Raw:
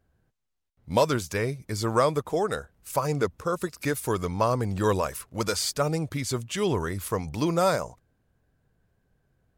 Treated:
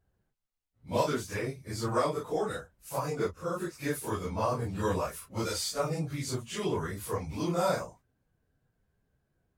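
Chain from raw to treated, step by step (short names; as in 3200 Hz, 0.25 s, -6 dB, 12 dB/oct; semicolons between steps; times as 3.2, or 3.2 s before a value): phase scrambler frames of 0.1 s; gain -5.5 dB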